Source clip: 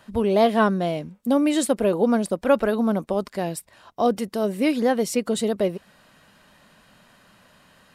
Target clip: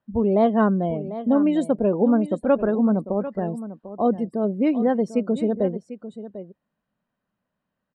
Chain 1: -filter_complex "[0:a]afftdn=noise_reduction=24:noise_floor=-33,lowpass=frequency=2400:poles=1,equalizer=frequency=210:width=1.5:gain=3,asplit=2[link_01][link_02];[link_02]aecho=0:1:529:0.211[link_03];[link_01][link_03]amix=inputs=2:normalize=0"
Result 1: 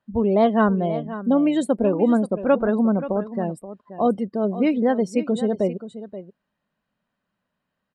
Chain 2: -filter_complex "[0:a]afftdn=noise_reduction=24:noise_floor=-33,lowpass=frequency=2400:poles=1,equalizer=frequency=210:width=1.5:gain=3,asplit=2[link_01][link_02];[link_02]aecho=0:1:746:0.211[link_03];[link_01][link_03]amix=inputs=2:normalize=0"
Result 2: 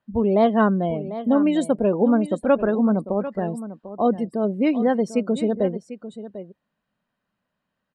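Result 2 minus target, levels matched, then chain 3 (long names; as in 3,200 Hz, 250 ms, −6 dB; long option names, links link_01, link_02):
2,000 Hz band +3.5 dB
-filter_complex "[0:a]afftdn=noise_reduction=24:noise_floor=-33,lowpass=frequency=1000:poles=1,equalizer=frequency=210:width=1.5:gain=3,asplit=2[link_01][link_02];[link_02]aecho=0:1:746:0.211[link_03];[link_01][link_03]amix=inputs=2:normalize=0"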